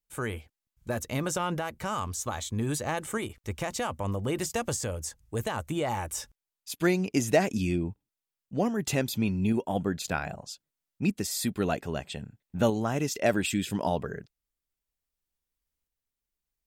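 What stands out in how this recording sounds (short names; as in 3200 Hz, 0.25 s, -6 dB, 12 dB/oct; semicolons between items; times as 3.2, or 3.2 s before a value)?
tremolo saw up 0.63 Hz, depth 35%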